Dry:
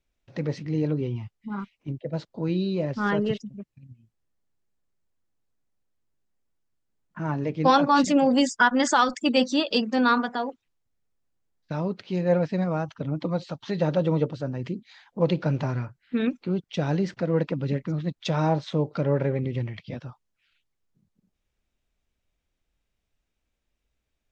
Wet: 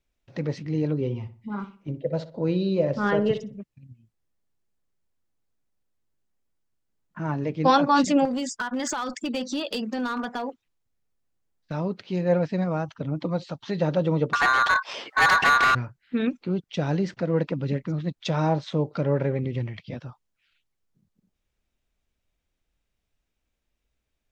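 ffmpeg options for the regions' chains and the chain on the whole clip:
ffmpeg -i in.wav -filter_complex "[0:a]asettb=1/sr,asplit=3[link_01][link_02][link_03];[link_01]atrim=end=0.984[link_04];[link_02]atrim=start=0.98:end=3.58,asetpts=PTS-STARTPTS,afade=type=in:duration=0.004:curve=qsin,afade=type=out:start_time=2.596:duration=0.004:curve=qsin,equalizer=frequency=530:width_type=o:width=0.56:gain=7.5,asplit=2[link_05][link_06];[link_06]adelay=62,lowpass=frequency=2300:poles=1,volume=-12dB,asplit=2[link_07][link_08];[link_08]adelay=62,lowpass=frequency=2300:poles=1,volume=0.38,asplit=2[link_09][link_10];[link_10]adelay=62,lowpass=frequency=2300:poles=1,volume=0.38,asplit=2[link_11][link_12];[link_12]adelay=62,lowpass=frequency=2300:poles=1,volume=0.38[link_13];[link_05][link_07][link_09][link_11][link_13]amix=inputs=5:normalize=0,atrim=end_sample=114660[link_14];[link_03]atrim=start=3.576[link_15];[link_04][link_14]acrossfade=duration=0.004:curve1=hsin:curve2=qsin[link_16];[link_16][link_15]acrossfade=duration=0.004:curve1=qsin:curve2=hsin,asettb=1/sr,asplit=3[link_17][link_18][link_19];[link_17]atrim=end=8.254[link_20];[link_18]atrim=start=8.25:end=11.73,asetpts=PTS-STARTPTS,afade=type=in:duration=0.004:curve=qsin,afade=type=out:start_time=3.476:duration=0.004:curve=qsin,acompressor=threshold=-23dB:ratio=20:attack=3.2:release=140:knee=1:detection=peak,asoftclip=type=hard:threshold=-22.5dB[link_21];[link_19]atrim=start=11.726[link_22];[link_20][link_21]acrossfade=duration=0.004:curve1=hsin:curve2=qsin[link_23];[link_23][link_22]acrossfade=duration=0.004:curve1=qsin:curve2=hsin,asettb=1/sr,asplit=3[link_24][link_25][link_26];[link_24]atrim=end=14.334[link_27];[link_25]atrim=start=14.33:end=15.75,asetpts=PTS-STARTPTS,afade=type=in:duration=0.004:curve=qsin,afade=type=out:start_time=1.416:duration=0.004:curve=qsin,aeval=exprs='val(0)*sin(2*PI*1300*n/s)':channel_layout=same,asplit=2[link_28][link_29];[link_29]highpass=frequency=720:poles=1,volume=29dB,asoftclip=type=tanh:threshold=-10dB[link_30];[link_28][link_30]amix=inputs=2:normalize=0,lowpass=frequency=2800:poles=1,volume=-6dB[link_31];[link_26]atrim=start=15.746[link_32];[link_27][link_31]acrossfade=duration=0.004:curve1=hsin:curve2=qsin[link_33];[link_33][link_32]acrossfade=duration=0.004:curve1=qsin:curve2=hsin" out.wav

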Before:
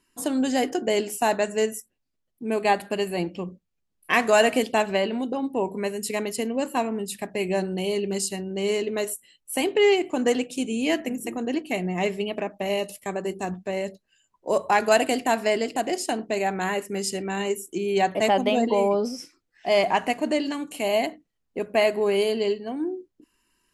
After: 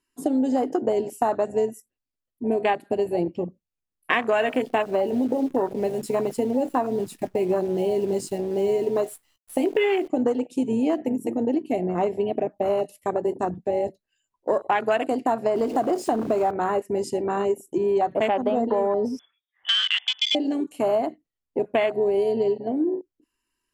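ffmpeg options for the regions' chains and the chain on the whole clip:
ffmpeg -i in.wav -filter_complex "[0:a]asettb=1/sr,asplit=3[link_01][link_02][link_03];[link_01]atrim=end=4.404[link_04];[link_02]atrim=start=4.4:end=10.08,asetpts=PTS-STARTPTS,afade=type=in:duration=0.004:curve=qsin,afade=type=out:start_time=5.676:duration=0.004:curve=qsin,acrusher=bits=7:dc=4:mix=0:aa=0.000001,asplit=2[link_05][link_06];[link_06]adelay=16,volume=-11dB[link_07];[link_05][link_07]amix=inputs=2:normalize=0,atrim=end_sample=250488[link_08];[link_03]atrim=start=10.076[link_09];[link_04][link_08]acrossfade=duration=0.004:curve1=hsin:curve2=qsin[link_10];[link_10][link_09]acrossfade=duration=0.004:curve1=qsin:curve2=hsin,asettb=1/sr,asplit=3[link_11][link_12][link_13];[link_11]atrim=end=15.554[link_14];[link_12]atrim=start=15.55:end=16.51,asetpts=PTS-STARTPTS,afade=type=in:duration=0.004:curve=qsin,afade=type=out:start_time=0.956:duration=0.004:curve=qsin,aeval=exprs='val(0)+0.5*0.0398*sgn(val(0))':channel_layout=same,bandreject=frequency=1400:width=20[link_15];[link_13]atrim=start=16.506[link_16];[link_14][link_15]acrossfade=duration=0.004:curve1=hsin:curve2=qsin[link_17];[link_17][link_16]acrossfade=duration=0.004:curve1=qsin:curve2=hsin,asettb=1/sr,asplit=3[link_18][link_19][link_20];[link_18]atrim=end=19.194[link_21];[link_19]atrim=start=19.19:end=20.35,asetpts=PTS-STARTPTS,afade=type=in:duration=0.004:curve=qsin,afade=type=out:start_time=1.156:duration=0.004:curve=qsin,lowshelf=frequency=180:width_type=q:width=1.5:gain=-10.5,acompressor=threshold=-22dB:ratio=2:attack=3.2:release=140:knee=1:detection=peak,lowpass=frequency=3100:width_type=q:width=0.5098,lowpass=frequency=3100:width_type=q:width=0.6013,lowpass=frequency=3100:width_type=q:width=0.9,lowpass=frequency=3100:width_type=q:width=2.563,afreqshift=-3700[link_22];[link_20]atrim=start=20.346[link_23];[link_21][link_22]acrossfade=duration=0.004:curve1=hsin:curve2=qsin[link_24];[link_24][link_23]acrossfade=duration=0.004:curve1=qsin:curve2=hsin,afwtdn=0.0501,equalizer=frequency=190:width_type=o:width=0.21:gain=-10.5,acompressor=threshold=-26dB:ratio=6,volume=7dB" out.wav

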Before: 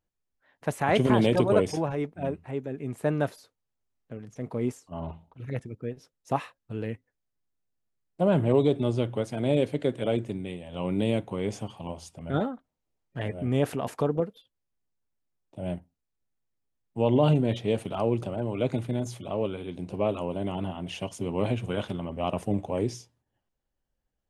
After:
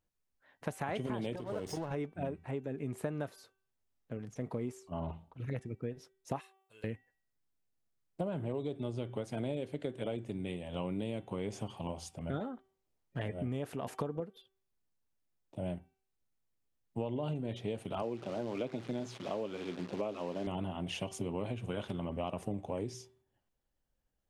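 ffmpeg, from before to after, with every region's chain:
ffmpeg -i in.wav -filter_complex "[0:a]asettb=1/sr,asplit=3[link_01][link_02][link_03];[link_01]atrim=end=1.364[link_04];[link_02]atrim=start=1.36:end=1.91,asetpts=PTS-STARTPTS,afade=type=in:duration=0.004:curve=qsin,afade=type=out:start_time=0.546:duration=0.004:curve=qsin,acompressor=threshold=-31dB:ratio=2.5:attack=3.2:release=140:knee=1:detection=peak,aeval=exprs='sgn(val(0))*max(abs(val(0))-0.00531,0)':channel_layout=same,bandreject=frequency=2400:width=9.8[link_05];[link_03]atrim=start=1.906[link_06];[link_04][link_05]acrossfade=duration=0.004:curve1=hsin:curve2=qsin[link_07];[link_07][link_06]acrossfade=duration=0.004:curve1=qsin:curve2=hsin,asettb=1/sr,asplit=3[link_08][link_09][link_10];[link_08]atrim=end=6.414[link_11];[link_09]atrim=start=6.41:end=6.84,asetpts=PTS-STARTPTS,afade=type=in:duration=0.004:curve=qsin,afade=type=out:start_time=0.426:duration=0.004:curve=qsin,aderivative,aecho=1:1:1.9:0.52,atrim=end_sample=18963[link_12];[link_10]atrim=start=6.836[link_13];[link_11][link_12]acrossfade=duration=0.004:curve1=hsin:curve2=qsin[link_14];[link_14][link_13]acrossfade=duration=0.004:curve1=qsin:curve2=hsin,asettb=1/sr,asplit=3[link_15][link_16][link_17];[link_15]atrim=end=18.024[link_18];[link_16]atrim=start=18.02:end=20.47,asetpts=PTS-STARTPTS,afade=type=in:duration=0.004:curve=qsin,afade=type=out:start_time=2.446:duration=0.004:curve=qsin,acrusher=bits=8:dc=4:mix=0:aa=0.000001,highpass=190,lowpass=4900[link_19];[link_17]atrim=start=20.466[link_20];[link_18][link_19]acrossfade=duration=0.004:curve1=hsin:curve2=qsin[link_21];[link_21][link_20]acrossfade=duration=0.004:curve1=qsin:curve2=hsin,bandreject=frequency=384.4:width_type=h:width=4,bandreject=frequency=768.8:width_type=h:width=4,bandreject=frequency=1153.2:width_type=h:width=4,bandreject=frequency=1537.6:width_type=h:width=4,bandreject=frequency=1922:width_type=h:width=4,bandreject=frequency=2306.4:width_type=h:width=4,bandreject=frequency=2690.8:width_type=h:width=4,bandreject=frequency=3075.2:width_type=h:width=4,bandreject=frequency=3459.6:width_type=h:width=4,acompressor=threshold=-32dB:ratio=10,volume=-1dB" out.wav

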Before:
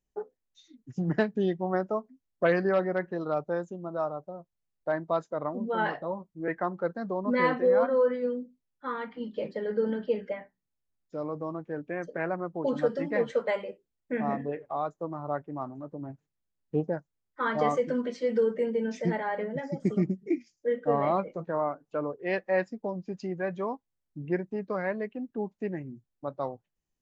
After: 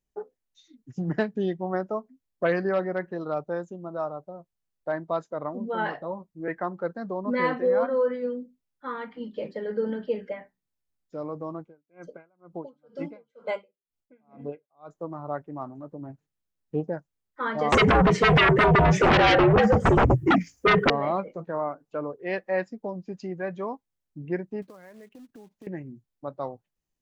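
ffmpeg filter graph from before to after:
ffmpeg -i in.wav -filter_complex "[0:a]asettb=1/sr,asplit=3[link_01][link_02][link_03];[link_01]atrim=end=11.614[link_04];[link_02]atrim=start=11.61:end=14.9,asetpts=PTS-STARTPTS,afade=type=in:duration=0.004:curve=qsin,afade=type=out:start_time=3.286:duration=0.004:curve=qsin,asuperstop=centerf=1800:order=12:qfactor=5.6,aeval=exprs='val(0)*pow(10,-39*(0.5-0.5*cos(2*PI*2.1*n/s))/20)':channel_layout=same[link_05];[link_03]atrim=start=14.896[link_06];[link_04][link_05]acrossfade=duration=0.004:curve1=hsin:curve2=qsin[link_07];[link_07][link_06]acrossfade=duration=0.004:curve1=qsin:curve2=hsin,asettb=1/sr,asplit=3[link_08][link_09][link_10];[link_08]atrim=end=17.724[link_11];[link_09]atrim=start=17.72:end=20.9,asetpts=PTS-STARTPTS,afade=type=in:duration=0.004:curve=qsin,afade=type=out:start_time=3.176:duration=0.004:curve=qsin,equalizer=frequency=4400:width=1.2:gain=-11.5,afreqshift=-62,aeval=exprs='0.188*sin(PI/2*7.08*val(0)/0.188)':channel_layout=same[link_12];[link_10]atrim=start=20.896[link_13];[link_11][link_12]acrossfade=duration=0.004:curve1=hsin:curve2=qsin[link_14];[link_14][link_13]acrossfade=duration=0.004:curve1=qsin:curve2=hsin,asettb=1/sr,asplit=3[link_15][link_16][link_17];[link_15]atrim=end=24.624[link_18];[link_16]atrim=start=24.62:end=25.67,asetpts=PTS-STARTPTS,afade=type=in:duration=0.004:curve=qsin,afade=type=out:start_time=1.046:duration=0.004:curve=qsin,acompressor=threshold=-44dB:ratio=8:attack=3.2:release=140:knee=1:detection=peak,acrusher=bits=4:mode=log:mix=0:aa=0.000001[link_19];[link_17]atrim=start=25.666[link_20];[link_18][link_19]acrossfade=duration=0.004:curve1=hsin:curve2=qsin[link_21];[link_21][link_20]acrossfade=duration=0.004:curve1=qsin:curve2=hsin" out.wav

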